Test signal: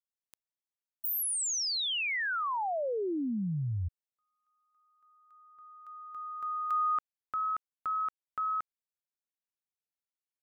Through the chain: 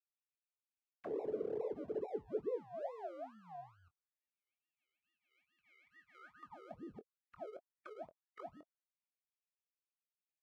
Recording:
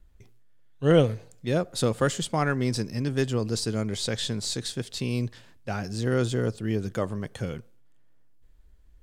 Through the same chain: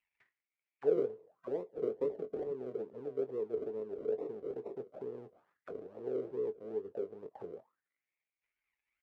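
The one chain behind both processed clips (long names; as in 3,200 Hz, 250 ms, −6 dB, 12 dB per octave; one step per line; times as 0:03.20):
harmonic and percussive parts rebalanced percussive +5 dB
in parallel at 0 dB: downward compressor, threshold −33 dBFS
on the sum: sample-and-hold swept by an LFO 40×, swing 60% 2.3 Hz
envelope filter 430–2,600 Hz, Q 8.5, down, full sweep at −22.5 dBFS
double-tracking delay 23 ms −11 dB
level −5.5 dB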